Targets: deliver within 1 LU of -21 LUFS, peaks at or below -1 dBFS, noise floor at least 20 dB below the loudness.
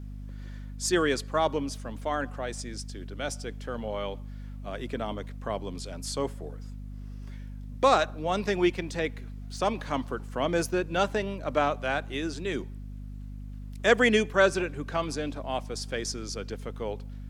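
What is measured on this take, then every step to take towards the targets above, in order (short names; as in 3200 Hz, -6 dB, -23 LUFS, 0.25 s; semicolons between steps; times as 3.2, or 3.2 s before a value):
hum 50 Hz; harmonics up to 250 Hz; hum level -37 dBFS; loudness -29.5 LUFS; peak -7.0 dBFS; loudness target -21.0 LUFS
-> notches 50/100/150/200/250 Hz; gain +8.5 dB; limiter -1 dBFS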